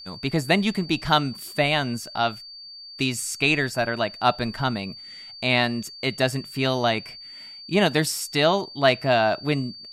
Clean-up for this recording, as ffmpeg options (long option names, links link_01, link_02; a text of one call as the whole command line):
ffmpeg -i in.wav -af "bandreject=frequency=4600:width=30" out.wav